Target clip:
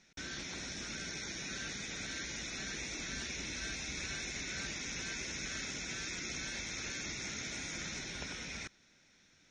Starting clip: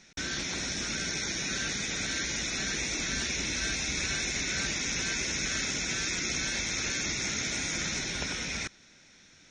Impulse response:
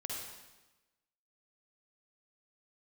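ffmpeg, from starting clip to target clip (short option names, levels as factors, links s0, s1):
-af "highshelf=f=7300:g=-4.5,volume=0.376"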